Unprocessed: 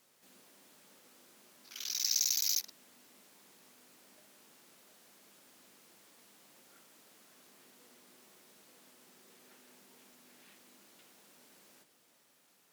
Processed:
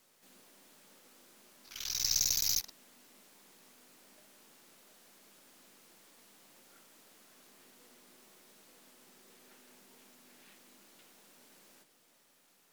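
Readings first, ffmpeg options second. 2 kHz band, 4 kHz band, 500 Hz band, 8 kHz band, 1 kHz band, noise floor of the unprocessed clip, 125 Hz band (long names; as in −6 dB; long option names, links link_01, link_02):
+2.0 dB, +0.5 dB, +2.0 dB, +0.5 dB, +2.5 dB, −69 dBFS, can't be measured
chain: -af "aeval=exprs='if(lt(val(0),0),0.708*val(0),val(0))':channel_layout=same,volume=2dB"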